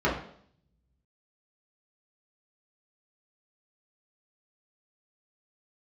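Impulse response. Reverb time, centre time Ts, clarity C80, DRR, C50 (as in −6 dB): 0.60 s, 32 ms, 10.5 dB, −7.5 dB, 6.5 dB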